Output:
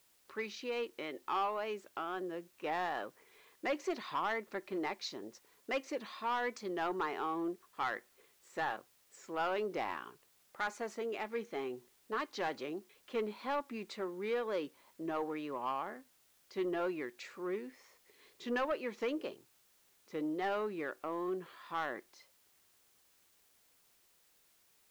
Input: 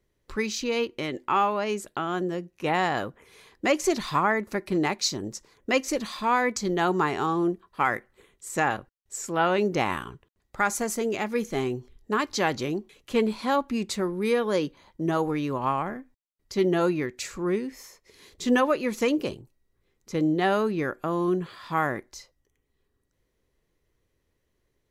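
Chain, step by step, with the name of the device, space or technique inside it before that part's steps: tape answering machine (BPF 340–3300 Hz; soft clip -18.5 dBFS, distortion -14 dB; wow and flutter; white noise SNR 30 dB); gain -8.5 dB

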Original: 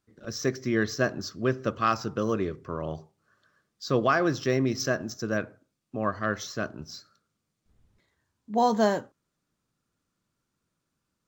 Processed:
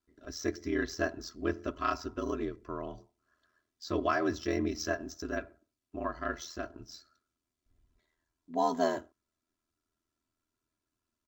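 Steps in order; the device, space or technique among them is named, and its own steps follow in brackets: ring-modulated robot voice (ring modulator 41 Hz; comb 3 ms, depth 75%); gain -5.5 dB

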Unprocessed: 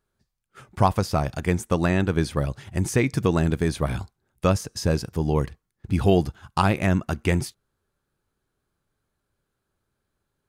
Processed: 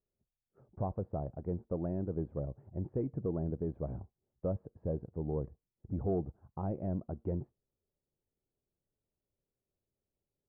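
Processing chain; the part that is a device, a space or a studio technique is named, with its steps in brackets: overdriven synthesiser ladder filter (soft clip -13 dBFS, distortion -16 dB; ladder low-pass 760 Hz, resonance 30%); gain -6 dB

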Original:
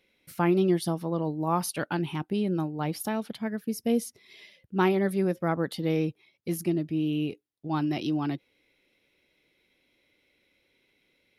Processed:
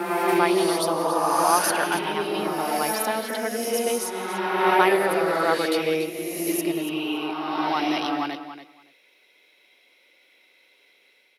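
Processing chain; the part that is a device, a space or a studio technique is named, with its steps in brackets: feedback echo 0.283 s, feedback 15%, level -11.5 dB; ghost voice (reverse; reverb RT60 2.2 s, pre-delay 68 ms, DRR -2 dB; reverse; HPF 560 Hz 12 dB/oct); gain +7.5 dB

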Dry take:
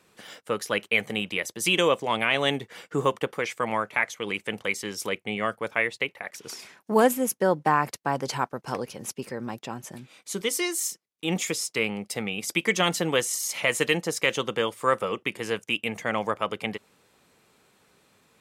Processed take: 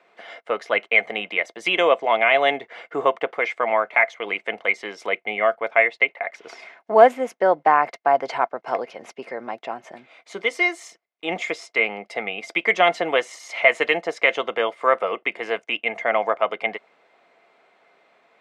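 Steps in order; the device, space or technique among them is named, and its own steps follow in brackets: tin-can telephone (BPF 430–2600 Hz; small resonant body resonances 680/2100 Hz, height 13 dB, ringing for 45 ms); gain +4.5 dB

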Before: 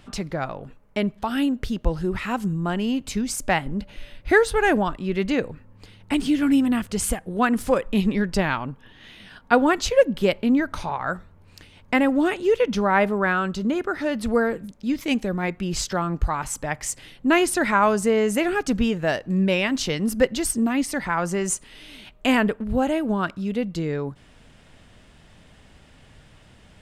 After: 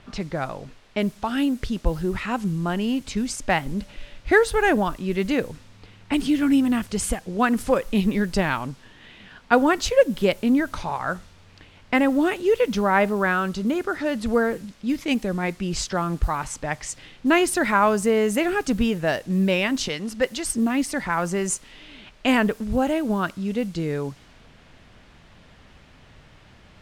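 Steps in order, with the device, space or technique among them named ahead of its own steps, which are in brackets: 19.88–20.47 low shelf 410 Hz -9 dB; cassette deck with a dynamic noise filter (white noise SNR 27 dB; low-pass opened by the level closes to 2900 Hz, open at -19 dBFS)

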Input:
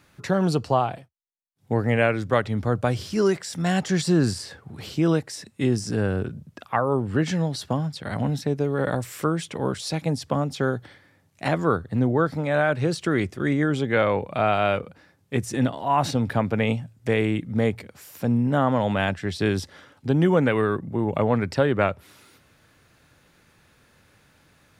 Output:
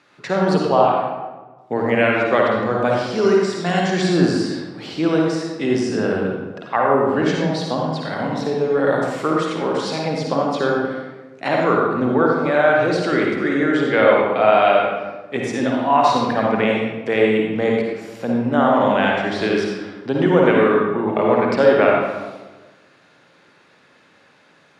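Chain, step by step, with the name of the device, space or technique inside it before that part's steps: supermarket ceiling speaker (BPF 280–5100 Hz; reverb RT60 1.2 s, pre-delay 48 ms, DRR -2 dB); gain +3.5 dB

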